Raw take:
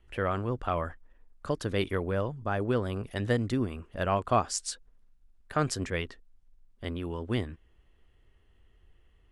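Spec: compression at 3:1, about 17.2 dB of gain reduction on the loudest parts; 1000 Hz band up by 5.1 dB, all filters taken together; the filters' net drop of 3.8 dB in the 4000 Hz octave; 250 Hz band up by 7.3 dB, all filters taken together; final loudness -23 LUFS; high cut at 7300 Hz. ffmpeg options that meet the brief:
-af "lowpass=7.3k,equalizer=f=250:t=o:g=8.5,equalizer=f=1k:t=o:g=6.5,equalizer=f=4k:t=o:g=-5.5,acompressor=threshold=-40dB:ratio=3,volume=18dB"

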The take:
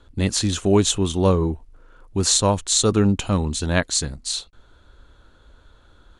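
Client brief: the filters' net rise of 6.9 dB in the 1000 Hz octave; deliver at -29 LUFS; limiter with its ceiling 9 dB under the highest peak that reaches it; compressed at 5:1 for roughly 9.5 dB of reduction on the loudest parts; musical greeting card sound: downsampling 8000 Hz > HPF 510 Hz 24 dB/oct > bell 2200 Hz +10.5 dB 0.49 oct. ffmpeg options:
-af "equalizer=f=1k:t=o:g=7.5,acompressor=threshold=-21dB:ratio=5,alimiter=limit=-17dB:level=0:latency=1,aresample=8000,aresample=44100,highpass=f=510:w=0.5412,highpass=f=510:w=1.3066,equalizer=f=2.2k:t=o:w=0.49:g=10.5,volume=5dB"

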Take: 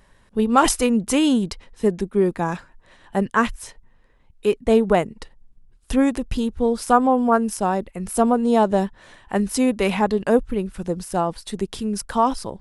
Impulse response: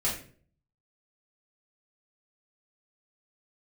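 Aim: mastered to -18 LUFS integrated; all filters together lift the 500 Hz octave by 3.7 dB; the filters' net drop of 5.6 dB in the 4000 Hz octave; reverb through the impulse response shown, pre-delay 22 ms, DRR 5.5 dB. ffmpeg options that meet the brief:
-filter_complex "[0:a]equalizer=f=500:t=o:g=4.5,equalizer=f=4k:t=o:g=-8.5,asplit=2[a][b];[1:a]atrim=start_sample=2205,adelay=22[c];[b][c]afir=irnorm=-1:irlink=0,volume=-13dB[d];[a][d]amix=inputs=2:normalize=0,volume=-0.5dB"

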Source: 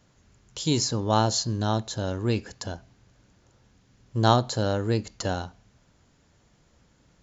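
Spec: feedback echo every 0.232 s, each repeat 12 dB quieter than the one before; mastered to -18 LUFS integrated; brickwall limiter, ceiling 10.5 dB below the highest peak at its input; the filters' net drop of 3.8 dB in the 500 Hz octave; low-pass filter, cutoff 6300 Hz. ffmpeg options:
-af "lowpass=6.3k,equalizer=f=500:t=o:g=-5,alimiter=limit=-16.5dB:level=0:latency=1,aecho=1:1:232|464|696:0.251|0.0628|0.0157,volume=11.5dB"

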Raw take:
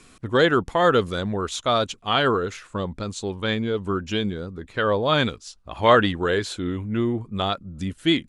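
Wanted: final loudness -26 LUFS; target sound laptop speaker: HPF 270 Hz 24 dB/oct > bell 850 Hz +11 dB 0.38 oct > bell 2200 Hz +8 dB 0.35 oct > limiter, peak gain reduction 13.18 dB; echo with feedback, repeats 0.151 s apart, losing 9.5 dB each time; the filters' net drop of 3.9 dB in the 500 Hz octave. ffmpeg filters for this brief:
-af "highpass=f=270:w=0.5412,highpass=f=270:w=1.3066,equalizer=f=500:t=o:g=-6,equalizer=f=850:t=o:w=0.38:g=11,equalizer=f=2.2k:t=o:w=0.35:g=8,aecho=1:1:151|302|453|604:0.335|0.111|0.0365|0.012,volume=2dB,alimiter=limit=-13dB:level=0:latency=1"

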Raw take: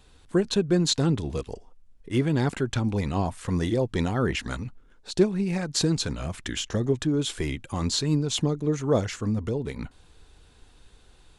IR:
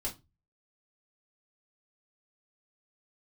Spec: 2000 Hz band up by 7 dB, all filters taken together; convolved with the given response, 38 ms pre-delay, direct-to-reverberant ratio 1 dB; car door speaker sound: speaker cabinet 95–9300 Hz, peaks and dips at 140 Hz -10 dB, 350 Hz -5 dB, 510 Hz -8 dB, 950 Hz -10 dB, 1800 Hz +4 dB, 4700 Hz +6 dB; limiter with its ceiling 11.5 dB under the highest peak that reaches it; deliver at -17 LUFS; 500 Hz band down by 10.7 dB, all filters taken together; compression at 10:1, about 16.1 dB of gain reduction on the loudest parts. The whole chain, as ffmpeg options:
-filter_complex "[0:a]equalizer=f=500:t=o:g=-8,equalizer=f=2k:t=o:g=7,acompressor=threshold=-36dB:ratio=10,alimiter=level_in=9.5dB:limit=-24dB:level=0:latency=1,volume=-9.5dB,asplit=2[a][b];[1:a]atrim=start_sample=2205,adelay=38[c];[b][c]afir=irnorm=-1:irlink=0,volume=-2dB[d];[a][d]amix=inputs=2:normalize=0,highpass=95,equalizer=f=140:t=q:w=4:g=-10,equalizer=f=350:t=q:w=4:g=-5,equalizer=f=510:t=q:w=4:g=-8,equalizer=f=950:t=q:w=4:g=-10,equalizer=f=1.8k:t=q:w=4:g=4,equalizer=f=4.7k:t=q:w=4:g=6,lowpass=f=9.3k:w=0.5412,lowpass=f=9.3k:w=1.3066,volume=24dB"

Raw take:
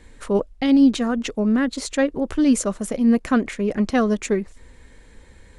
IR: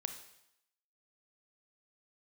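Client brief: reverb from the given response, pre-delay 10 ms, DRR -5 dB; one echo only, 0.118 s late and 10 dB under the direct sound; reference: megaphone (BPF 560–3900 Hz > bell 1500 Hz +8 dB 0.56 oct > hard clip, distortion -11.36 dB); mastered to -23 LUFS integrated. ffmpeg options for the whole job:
-filter_complex "[0:a]aecho=1:1:118:0.316,asplit=2[a][b];[1:a]atrim=start_sample=2205,adelay=10[c];[b][c]afir=irnorm=-1:irlink=0,volume=6dB[d];[a][d]amix=inputs=2:normalize=0,highpass=560,lowpass=3.9k,equalizer=f=1.5k:t=o:w=0.56:g=8,asoftclip=type=hard:threshold=-14.5dB,volume=-1dB"

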